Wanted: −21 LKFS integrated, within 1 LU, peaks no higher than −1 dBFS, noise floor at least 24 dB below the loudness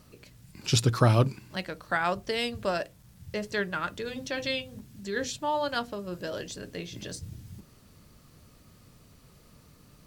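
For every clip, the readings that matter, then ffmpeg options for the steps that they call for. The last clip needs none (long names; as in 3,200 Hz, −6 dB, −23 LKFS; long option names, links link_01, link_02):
integrated loudness −30.0 LKFS; sample peak −7.0 dBFS; target loudness −21.0 LKFS
→ -af "volume=9dB,alimiter=limit=-1dB:level=0:latency=1"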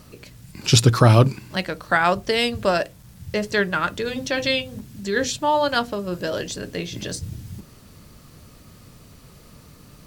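integrated loudness −21.5 LKFS; sample peak −1.0 dBFS; background noise floor −48 dBFS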